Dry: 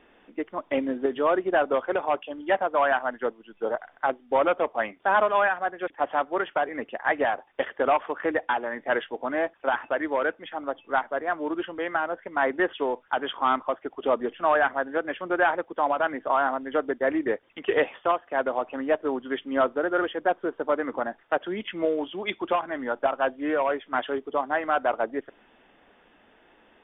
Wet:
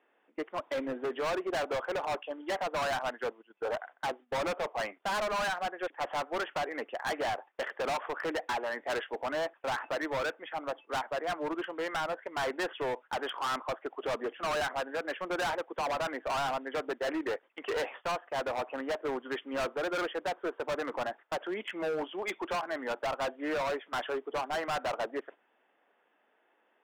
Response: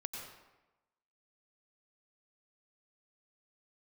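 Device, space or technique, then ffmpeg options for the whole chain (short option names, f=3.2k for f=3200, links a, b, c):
walkie-talkie: -af "highpass=410,lowpass=2.5k,asoftclip=type=hard:threshold=-29.5dB,agate=range=-11dB:threshold=-48dB:ratio=16:detection=peak"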